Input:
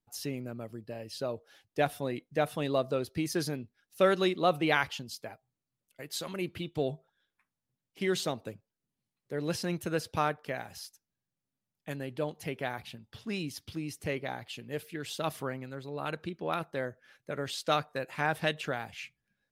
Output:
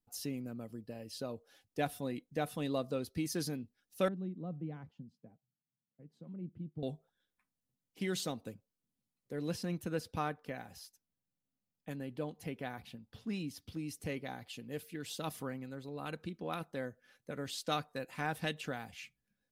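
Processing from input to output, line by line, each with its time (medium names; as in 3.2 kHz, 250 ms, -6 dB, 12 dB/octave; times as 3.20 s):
4.08–6.83 s: band-pass filter 160 Hz, Q 1.9
9.50–13.79 s: peaking EQ 9.3 kHz -5.5 dB 2.4 oct
whole clip: peaking EQ 1.8 kHz -6 dB 2.8 oct; comb 4 ms, depth 31%; dynamic bell 540 Hz, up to -4 dB, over -44 dBFS, Q 0.96; trim -1.5 dB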